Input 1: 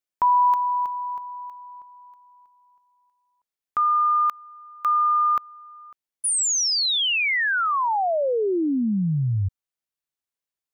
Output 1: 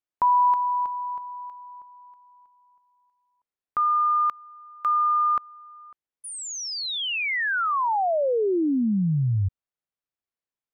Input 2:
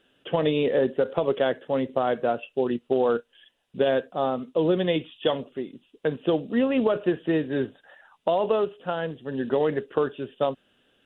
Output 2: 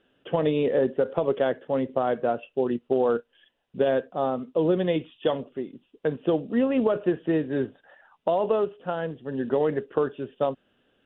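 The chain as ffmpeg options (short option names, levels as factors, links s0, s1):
-af "lowpass=f=1800:p=1"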